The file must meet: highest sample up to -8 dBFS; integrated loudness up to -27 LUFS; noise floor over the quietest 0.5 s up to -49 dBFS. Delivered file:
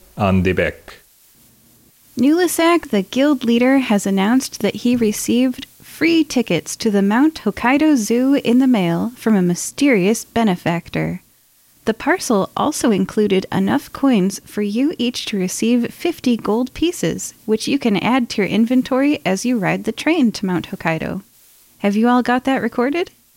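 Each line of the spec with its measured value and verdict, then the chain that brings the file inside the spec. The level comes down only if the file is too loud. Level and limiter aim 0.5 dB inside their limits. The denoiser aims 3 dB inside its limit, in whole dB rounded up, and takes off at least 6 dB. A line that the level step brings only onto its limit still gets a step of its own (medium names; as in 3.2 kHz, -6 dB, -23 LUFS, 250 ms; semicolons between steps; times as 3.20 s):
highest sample -4.0 dBFS: fail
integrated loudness -17.5 LUFS: fail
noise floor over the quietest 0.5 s -54 dBFS: pass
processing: trim -10 dB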